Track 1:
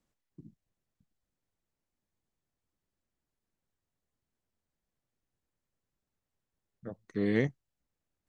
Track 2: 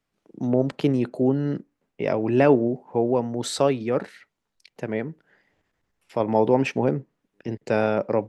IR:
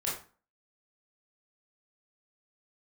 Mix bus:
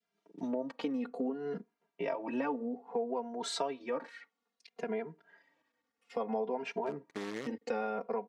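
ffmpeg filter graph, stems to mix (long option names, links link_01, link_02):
-filter_complex "[0:a]acompressor=threshold=-32dB:ratio=6,acrusher=bits=7:dc=4:mix=0:aa=0.000001,volume=-2.5dB[link_01];[1:a]aecho=1:1:4.3:0.89,asplit=2[link_02][link_03];[link_03]adelay=2.5,afreqshift=-0.6[link_04];[link_02][link_04]amix=inputs=2:normalize=1,volume=-3.5dB[link_05];[link_01][link_05]amix=inputs=2:normalize=0,adynamicequalizer=threshold=0.00891:dfrequency=950:dqfactor=1.1:tfrequency=950:tqfactor=1.1:attack=5:release=100:ratio=0.375:range=4:mode=boostabove:tftype=bell,highpass=240,lowpass=6700,acompressor=threshold=-33dB:ratio=5"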